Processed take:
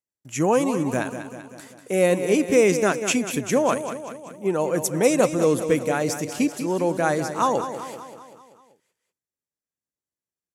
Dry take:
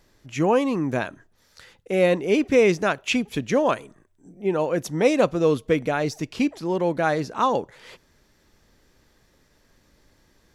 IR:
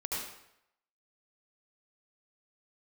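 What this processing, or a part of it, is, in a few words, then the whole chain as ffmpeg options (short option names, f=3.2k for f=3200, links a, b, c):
budget condenser microphone: -af "agate=range=-38dB:threshold=-51dB:ratio=16:detection=peak,highpass=92,highshelf=f=5.8k:t=q:w=1.5:g=11.5,aecho=1:1:193|386|579|772|965|1158:0.316|0.177|0.0992|0.0555|0.0311|0.0174"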